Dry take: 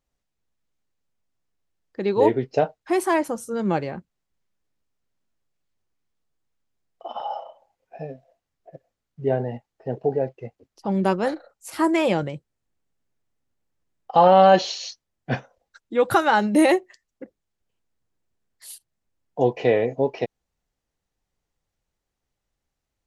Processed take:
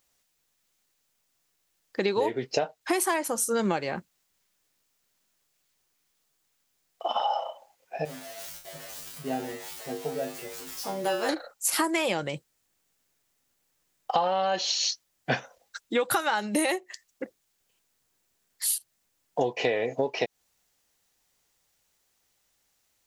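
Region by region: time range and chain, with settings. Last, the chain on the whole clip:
0:08.05–0:11.29: converter with a step at zero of −35.5 dBFS + tuned comb filter 52 Hz, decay 0.35 s, harmonics odd, mix 100%
whole clip: spectral tilt +3 dB per octave; downward compressor 12 to 1, threshold −30 dBFS; level +7.5 dB

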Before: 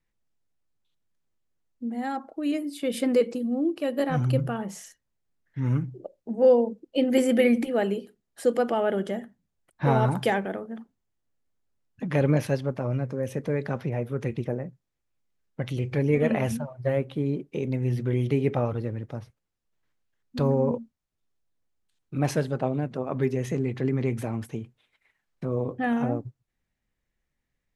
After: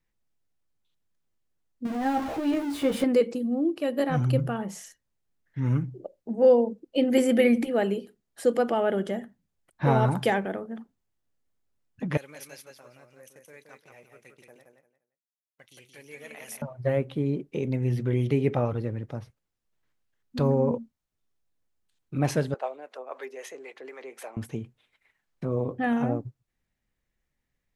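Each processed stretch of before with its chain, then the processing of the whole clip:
0:01.85–0:03.04: converter with a step at zero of −28.5 dBFS + high-shelf EQ 2,600 Hz −11 dB + double-tracking delay 15 ms −5 dB
0:12.17–0:16.62: noise gate −34 dBFS, range −14 dB + first difference + repeating echo 173 ms, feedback 22%, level −5 dB
0:22.54–0:24.37: high-pass filter 510 Hz 24 dB per octave + two-band tremolo in antiphase 3.9 Hz, crossover 420 Hz
whole clip: no processing

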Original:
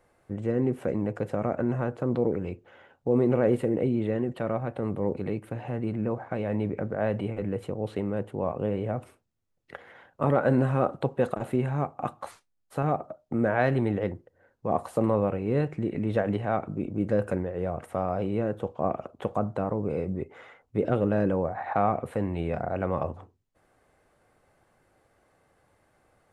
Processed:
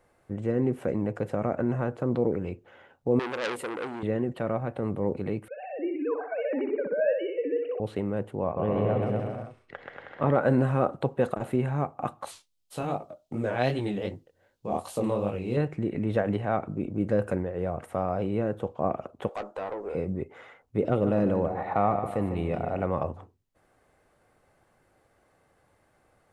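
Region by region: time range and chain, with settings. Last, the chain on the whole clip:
0:03.19–0:04.03: bass and treble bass −15 dB, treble +9 dB + saturating transformer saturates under 2,700 Hz
0:05.48–0:07.80: three sine waves on the formant tracks + high-pass filter 230 Hz + repeating echo 63 ms, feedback 42%, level −5 dB
0:08.44–0:10.33: low-pass filter 4,900 Hz + bouncing-ball delay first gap 130 ms, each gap 0.8×, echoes 8, each echo −2 dB
0:12.25–0:15.57: high shelf with overshoot 2,400 Hz +9.5 dB, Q 1.5 + chorus effect 2.6 Hz, delay 18.5 ms, depth 6.4 ms
0:19.29–0:19.95: high-pass filter 350 Hz 24 dB per octave + tube saturation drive 28 dB, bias 0.2 + double-tracking delay 15 ms −9 dB
0:20.82–0:22.86: notch filter 1,600 Hz, Q 6.9 + repeating echo 150 ms, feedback 38%, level −9.5 dB
whole clip: no processing

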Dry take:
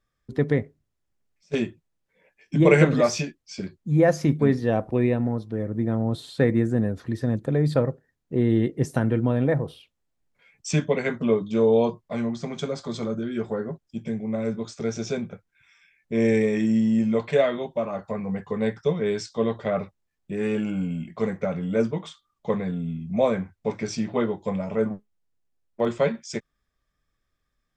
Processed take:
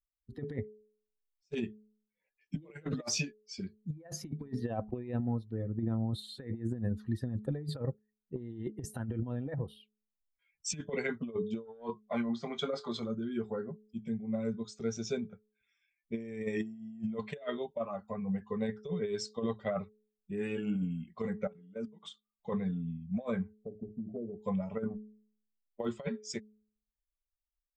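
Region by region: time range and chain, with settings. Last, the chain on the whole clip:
0:11.65–0:13.00: double-tracking delay 26 ms −11 dB + mid-hump overdrive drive 13 dB, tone 1,900 Hz, clips at −8.5 dBFS
0:21.47–0:22.03: noise gate −24 dBFS, range −10 dB + high-pass filter 110 Hz + output level in coarse steps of 14 dB
0:23.57–0:24.40: Butterworth low-pass 710 Hz 96 dB per octave + downward compressor, threshold −26 dBFS
whole clip: spectral dynamics exaggerated over time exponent 1.5; hum removal 213.3 Hz, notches 2; compressor whose output falls as the input rises −29 dBFS, ratio −0.5; level −5 dB

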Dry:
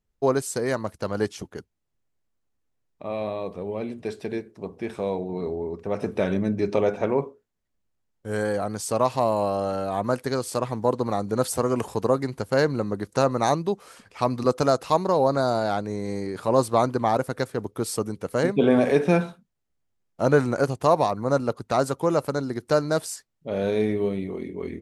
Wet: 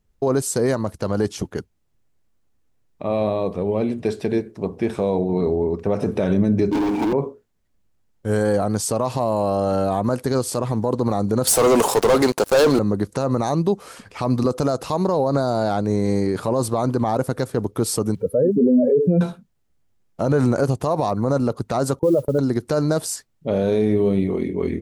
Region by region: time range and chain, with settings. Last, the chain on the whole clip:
0:06.71–0:07.13: formant filter u + leveller curve on the samples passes 5 + multiband upward and downward compressor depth 70%
0:11.47–0:12.79: high-pass filter 450 Hz + leveller curve on the samples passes 5
0:18.15–0:19.21: expanding power law on the bin magnitudes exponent 2.8 + bit-depth reduction 12 bits, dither none
0:21.99–0:22.39: expanding power law on the bin magnitudes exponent 2.3 + noise gate −37 dBFS, range −22 dB + noise that follows the level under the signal 31 dB
whole clip: dynamic equaliser 2,100 Hz, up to −5 dB, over −43 dBFS, Q 1.1; brickwall limiter −19 dBFS; low-shelf EQ 340 Hz +4.5 dB; level +7 dB

